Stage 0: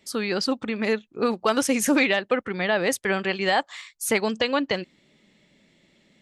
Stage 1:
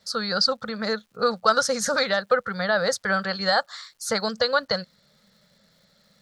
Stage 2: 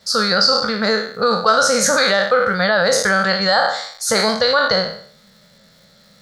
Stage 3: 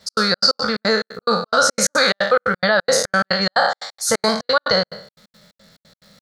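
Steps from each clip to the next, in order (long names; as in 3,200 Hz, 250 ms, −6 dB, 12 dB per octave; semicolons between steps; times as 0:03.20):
drawn EQ curve 200 Hz 0 dB, 330 Hz −23 dB, 490 Hz +3 dB, 970 Hz −3 dB, 1,400 Hz +10 dB, 2,600 Hz −17 dB, 4,300 Hz +10 dB, 13,000 Hz −13 dB; surface crackle 420 per second −54 dBFS
peak hold with a decay on every bin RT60 0.56 s; in parallel at −1 dB: compressor whose output falls as the input rises −24 dBFS, ratio −1; on the sum: level +1.5 dB
gate pattern "x.xx.x.x" 177 BPM −60 dB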